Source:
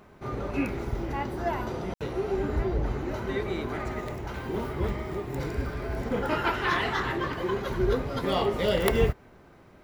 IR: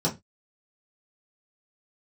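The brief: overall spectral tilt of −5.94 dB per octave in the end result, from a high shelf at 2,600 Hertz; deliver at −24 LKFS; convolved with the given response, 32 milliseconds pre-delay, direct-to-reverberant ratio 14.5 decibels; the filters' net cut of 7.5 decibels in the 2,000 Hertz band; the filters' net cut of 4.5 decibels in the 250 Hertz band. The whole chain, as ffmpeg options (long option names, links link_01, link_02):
-filter_complex "[0:a]equalizer=frequency=250:width_type=o:gain=-6.5,equalizer=frequency=2000:width_type=o:gain=-7,highshelf=frequency=2600:gain=-6.5,asplit=2[link_01][link_02];[1:a]atrim=start_sample=2205,adelay=32[link_03];[link_02][link_03]afir=irnorm=-1:irlink=0,volume=-25dB[link_04];[link_01][link_04]amix=inputs=2:normalize=0,volume=8dB"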